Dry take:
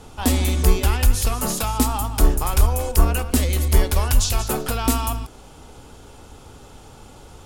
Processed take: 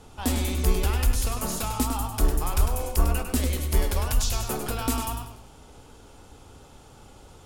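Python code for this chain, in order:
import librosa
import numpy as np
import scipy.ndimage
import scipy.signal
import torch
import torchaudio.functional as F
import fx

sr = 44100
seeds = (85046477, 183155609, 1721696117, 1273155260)

y = fx.echo_warbled(x, sr, ms=101, feedback_pct=35, rate_hz=2.8, cents=79, wet_db=-7.0)
y = F.gain(torch.from_numpy(y), -6.5).numpy()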